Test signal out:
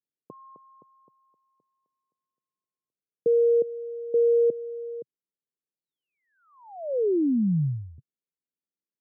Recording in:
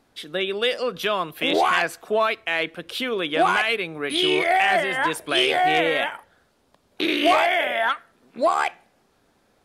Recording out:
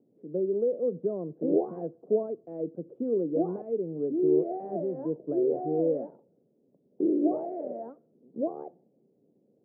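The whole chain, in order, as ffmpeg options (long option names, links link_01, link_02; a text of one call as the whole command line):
ffmpeg -i in.wav -af "asuperpass=centerf=260:order=8:qfactor=0.68" out.wav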